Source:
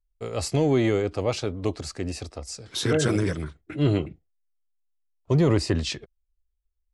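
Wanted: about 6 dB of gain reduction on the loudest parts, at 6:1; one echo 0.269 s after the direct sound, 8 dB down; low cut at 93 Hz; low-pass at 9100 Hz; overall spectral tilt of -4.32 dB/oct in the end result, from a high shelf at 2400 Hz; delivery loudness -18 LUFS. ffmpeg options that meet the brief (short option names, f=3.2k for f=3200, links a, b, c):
-af "highpass=93,lowpass=9.1k,highshelf=f=2.4k:g=6.5,acompressor=threshold=-23dB:ratio=6,aecho=1:1:269:0.398,volume=11dB"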